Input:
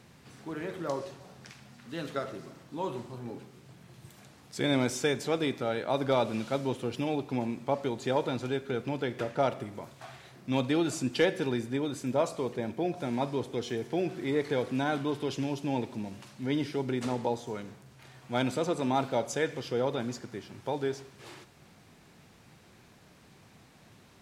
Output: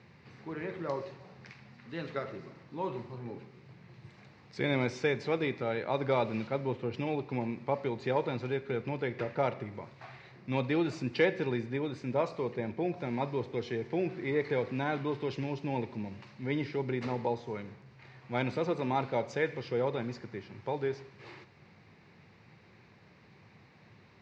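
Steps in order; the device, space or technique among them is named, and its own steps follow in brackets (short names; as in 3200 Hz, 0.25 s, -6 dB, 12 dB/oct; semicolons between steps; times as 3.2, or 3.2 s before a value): guitar cabinet (speaker cabinet 87–4400 Hz, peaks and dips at 99 Hz +4 dB, 270 Hz -6 dB, 670 Hz -5 dB, 1400 Hz -4 dB, 2100 Hz +4 dB, 3300 Hz -9 dB); 6.47–6.94 high shelf 3900 Hz -9 dB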